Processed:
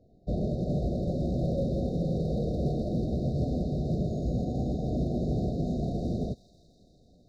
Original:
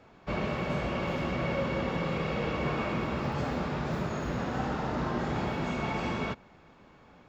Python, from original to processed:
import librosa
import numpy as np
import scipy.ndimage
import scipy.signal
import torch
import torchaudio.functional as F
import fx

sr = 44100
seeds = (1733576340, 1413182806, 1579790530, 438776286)

p1 = fx.tracing_dist(x, sr, depth_ms=0.024)
p2 = fx.tilt_eq(p1, sr, slope=-2.5)
p3 = np.clip(p2, -10.0 ** (-22.0 / 20.0), 10.0 ** (-22.0 / 20.0))
p4 = fx.brickwall_bandstop(p3, sr, low_hz=760.0, high_hz=3600.0)
p5 = p4 + fx.echo_wet_highpass(p4, sr, ms=164, feedback_pct=80, hz=2200.0, wet_db=-5.5, dry=0)
y = fx.upward_expand(p5, sr, threshold_db=-40.0, expansion=1.5)